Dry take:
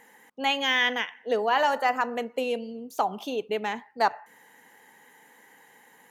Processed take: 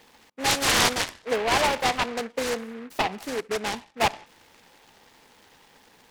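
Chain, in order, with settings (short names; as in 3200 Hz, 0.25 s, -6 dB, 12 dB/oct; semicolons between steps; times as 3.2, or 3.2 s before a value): dynamic EQ 2900 Hz, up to +5 dB, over -40 dBFS, Q 1.3; noise-modulated delay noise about 1400 Hz, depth 0.13 ms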